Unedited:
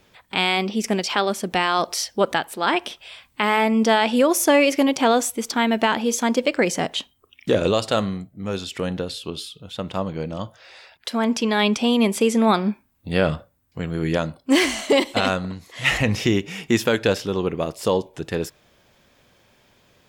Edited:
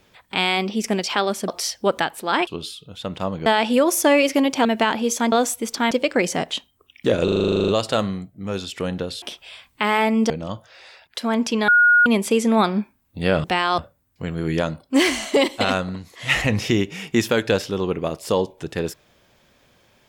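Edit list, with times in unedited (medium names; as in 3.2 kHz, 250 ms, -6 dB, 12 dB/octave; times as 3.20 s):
1.48–1.82 s: move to 13.34 s
2.81–3.89 s: swap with 9.21–10.20 s
5.08–5.67 s: move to 6.34 s
7.67 s: stutter 0.04 s, 12 plays
11.58–11.96 s: bleep 1.44 kHz -10.5 dBFS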